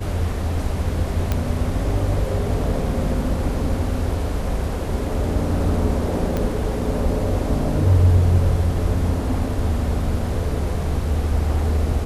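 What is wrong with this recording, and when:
1.32 s: pop -8 dBFS
6.37 s: pop -11 dBFS

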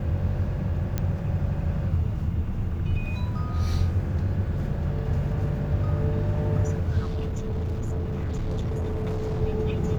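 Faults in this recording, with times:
0.98 s: pop -14 dBFS
6.99–9.42 s: clipped -24.5 dBFS

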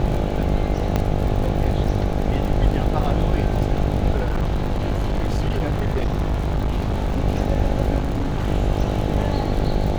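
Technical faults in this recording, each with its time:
buzz 50 Hz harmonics 17 -24 dBFS
crackle 50 per s -27 dBFS
0.96 s: pop -8 dBFS
4.17–7.24 s: clipped -17 dBFS
7.98–8.48 s: clipped -18 dBFS

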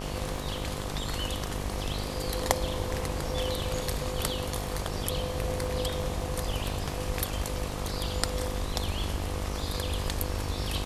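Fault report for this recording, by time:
buzz 50 Hz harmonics 25 -36 dBFS
crackle 10 per s -37 dBFS

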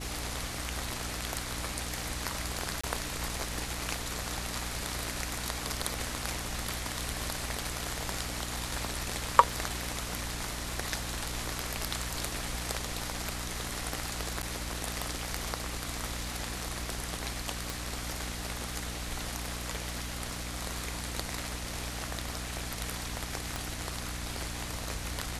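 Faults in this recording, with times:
crackle 16 per s -43 dBFS
hum 60 Hz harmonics 5 -41 dBFS
2.81–2.83 s: dropout 25 ms
14.42–14.43 s: dropout 9 ms
17.70 s: pop
23.56 s: pop

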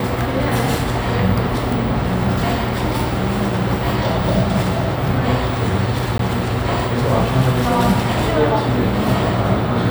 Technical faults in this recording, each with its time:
6.18–6.19 s: dropout 13 ms

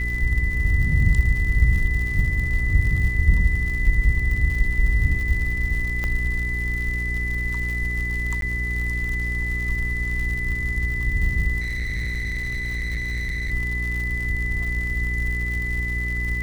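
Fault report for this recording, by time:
crackle 110 per s -29 dBFS
hum 60 Hz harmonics 7 -27 dBFS
whine 2 kHz -26 dBFS
6.04 s: pop -14 dBFS
8.41–8.42 s: dropout
11.60–13.52 s: clipped -23 dBFS

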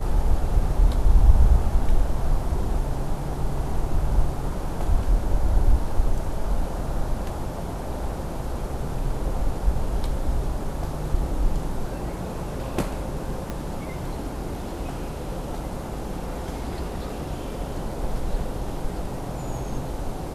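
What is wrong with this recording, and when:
13.50 s: pop -17 dBFS

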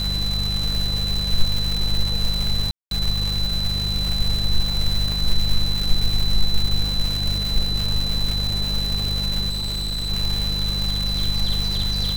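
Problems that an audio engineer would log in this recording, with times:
crackle 510 per s -23 dBFS
hum 50 Hz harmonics 4 -26 dBFS
whine 4 kHz -24 dBFS
2.71–2.91 s: dropout 202 ms
5.12 s: pop
9.49–10.11 s: clipped -22 dBFS

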